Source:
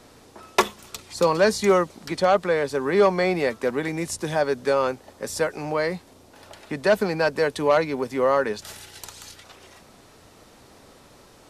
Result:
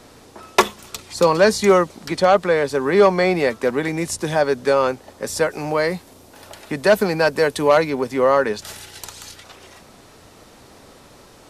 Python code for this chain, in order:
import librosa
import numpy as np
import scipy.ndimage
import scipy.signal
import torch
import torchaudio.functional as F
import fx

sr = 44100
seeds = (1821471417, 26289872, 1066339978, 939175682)

y = fx.high_shelf(x, sr, hz=11000.0, db=10.5, at=(5.51, 7.9))
y = F.gain(torch.from_numpy(y), 4.5).numpy()